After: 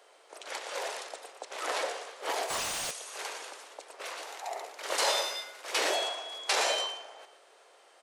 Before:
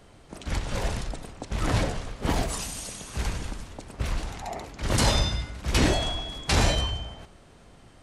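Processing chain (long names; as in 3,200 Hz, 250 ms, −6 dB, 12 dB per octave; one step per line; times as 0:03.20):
0:04.22–0:05.96: variable-slope delta modulation 64 kbit/s
Butterworth high-pass 430 Hz 36 dB per octave
single-tap delay 117 ms −10.5 dB
0:02.50–0:02.91: mid-hump overdrive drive 33 dB, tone 3,100 Hz, clips at −21 dBFS
level −2 dB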